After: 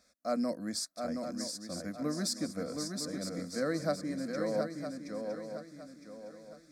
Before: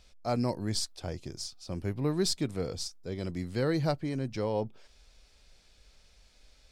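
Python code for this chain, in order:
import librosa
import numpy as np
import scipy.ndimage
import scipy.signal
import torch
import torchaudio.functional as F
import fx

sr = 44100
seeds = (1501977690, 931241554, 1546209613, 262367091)

y = scipy.signal.sosfilt(scipy.signal.butter(2, 160.0, 'highpass', fs=sr, output='sos'), x)
y = fx.fixed_phaser(y, sr, hz=590.0, stages=8)
y = fx.echo_swing(y, sr, ms=961, ratio=3, feedback_pct=34, wet_db=-5.0)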